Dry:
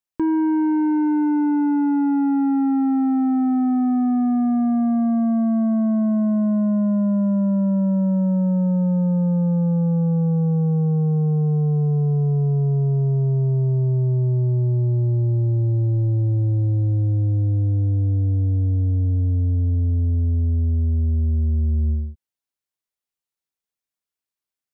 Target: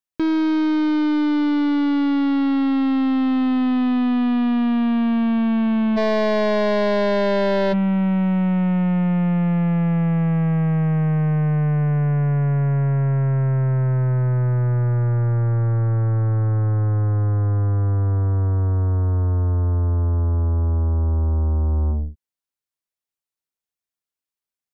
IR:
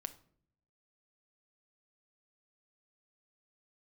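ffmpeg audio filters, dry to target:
-filter_complex "[0:a]aeval=exprs='0.141*(cos(1*acos(clip(val(0)/0.141,-1,1)))-cos(1*PI/2))+0.00501*(cos(4*acos(clip(val(0)/0.141,-1,1)))-cos(4*PI/2))+0.00794*(cos(5*acos(clip(val(0)/0.141,-1,1)))-cos(5*PI/2))+0.0178*(cos(6*acos(clip(val(0)/0.141,-1,1)))-cos(6*PI/2))+0.01*(cos(7*acos(clip(val(0)/0.141,-1,1)))-cos(7*PI/2))':channel_layout=same,asplit=3[link_01][link_02][link_03];[link_01]afade=type=out:start_time=5.96:duration=0.02[link_04];[link_02]aeval=exprs='0.188*sin(PI/2*2.51*val(0)/0.188)':channel_layout=same,afade=type=in:start_time=5.96:duration=0.02,afade=type=out:start_time=7.72:duration=0.02[link_05];[link_03]afade=type=in:start_time=7.72:duration=0.02[link_06];[link_04][link_05][link_06]amix=inputs=3:normalize=0"

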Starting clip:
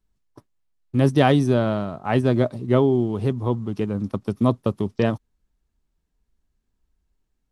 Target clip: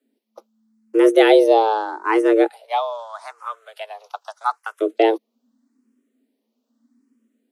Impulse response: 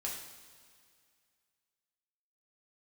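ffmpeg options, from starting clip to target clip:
-filter_complex "[0:a]asplit=3[link_01][link_02][link_03];[link_01]afade=type=out:start_time=2.46:duration=0.02[link_04];[link_02]highpass=frequency=580:width=0.5412,highpass=frequency=580:width=1.3066,afade=type=in:start_time=2.46:duration=0.02,afade=type=out:start_time=4.8:duration=0.02[link_05];[link_03]afade=type=in:start_time=4.8:duration=0.02[link_06];[link_04][link_05][link_06]amix=inputs=3:normalize=0,afreqshift=220,asplit=2[link_07][link_08];[link_08]afreqshift=0.81[link_09];[link_07][link_09]amix=inputs=2:normalize=1,volume=6.5dB"

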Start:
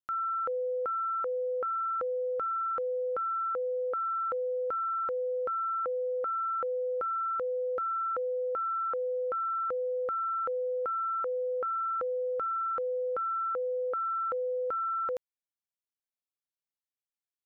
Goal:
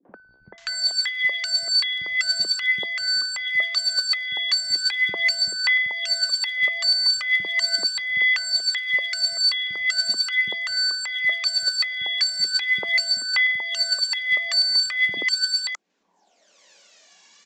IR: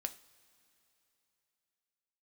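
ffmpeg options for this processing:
-filter_complex "[0:a]bandreject=frequency=1100:width=6,afreqshift=170,acompressor=mode=upward:threshold=-50dB:ratio=2.5,aresample=16000,aeval=exprs='0.0596*sin(PI/2*3.98*val(0)/0.0596)':channel_layout=same,aresample=44100,highpass=140,aphaser=in_gain=1:out_gain=1:delay=1.8:decay=0.67:speed=0.39:type=sinusoidal,acrossover=split=250|990[link_01][link_02][link_03];[link_02]adelay=50[link_04];[link_03]adelay=580[link_05];[link_01][link_04][link_05]amix=inputs=3:normalize=0,volume=3.5dB" -ar 32000 -c:a libvorbis -b:a 96k

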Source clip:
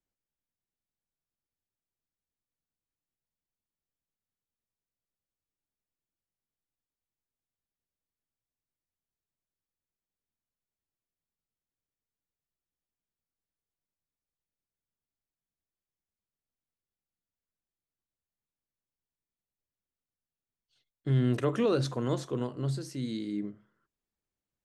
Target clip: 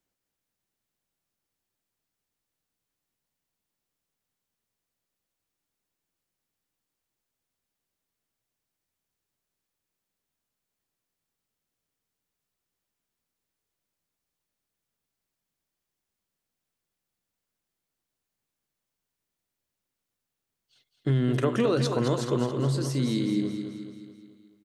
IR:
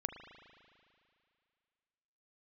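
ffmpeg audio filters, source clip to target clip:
-filter_complex "[0:a]lowshelf=frequency=67:gain=-10,acompressor=threshold=-30dB:ratio=4,asplit=2[link_01][link_02];[link_02]aecho=0:1:215|430|645|860|1075|1290:0.422|0.219|0.114|0.0593|0.0308|0.016[link_03];[link_01][link_03]amix=inputs=2:normalize=0,volume=8.5dB"

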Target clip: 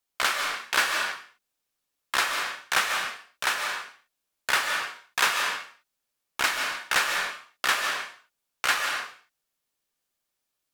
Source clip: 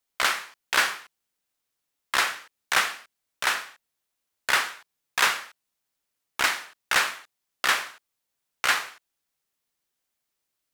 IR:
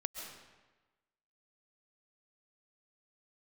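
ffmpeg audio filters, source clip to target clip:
-filter_complex "[0:a]bandreject=frequency=2000:width=23[link_01];[1:a]atrim=start_sample=2205,afade=type=out:start_time=0.34:duration=0.01,atrim=end_sample=15435,asetrate=40572,aresample=44100[link_02];[link_01][link_02]afir=irnorm=-1:irlink=0"

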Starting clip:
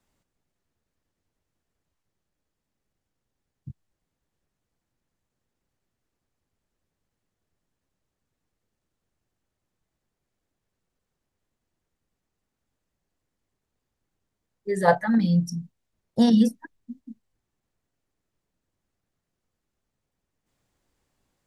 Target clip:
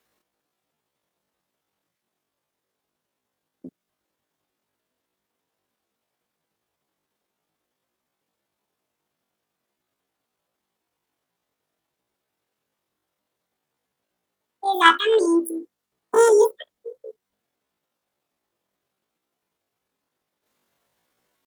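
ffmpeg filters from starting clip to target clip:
ffmpeg -i in.wav -af "highpass=frequency=210:poles=1,asetrate=85689,aresample=44100,atempo=0.514651,volume=5.5dB" out.wav

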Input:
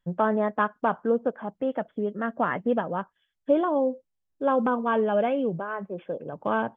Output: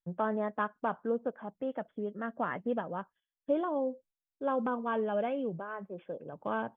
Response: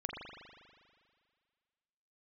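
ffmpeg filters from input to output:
-af "agate=range=-11dB:threshold=-51dB:ratio=16:detection=peak,volume=-8dB"

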